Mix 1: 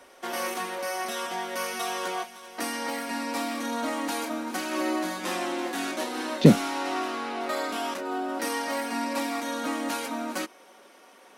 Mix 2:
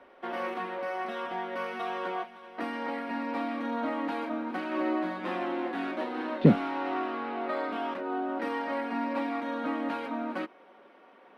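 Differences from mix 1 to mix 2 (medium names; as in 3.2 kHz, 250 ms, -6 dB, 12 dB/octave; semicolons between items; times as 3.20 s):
speech -3.5 dB; master: add distance through air 460 m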